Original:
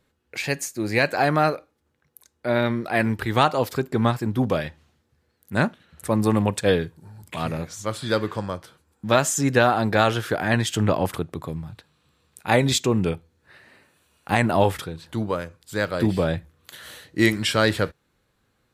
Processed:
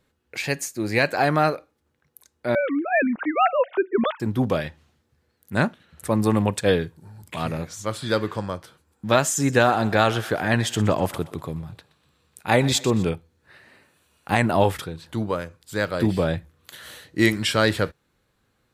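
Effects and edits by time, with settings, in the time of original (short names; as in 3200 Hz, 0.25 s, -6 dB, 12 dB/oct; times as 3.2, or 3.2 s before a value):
2.55–4.2 sine-wave speech
9.28–13.09 thinning echo 0.123 s, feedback 48%, level -17 dB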